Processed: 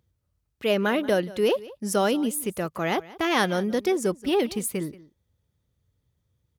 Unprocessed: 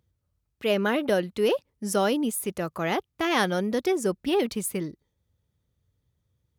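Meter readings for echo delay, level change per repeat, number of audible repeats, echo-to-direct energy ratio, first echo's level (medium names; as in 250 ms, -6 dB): 180 ms, no regular repeats, 1, -19.5 dB, -19.5 dB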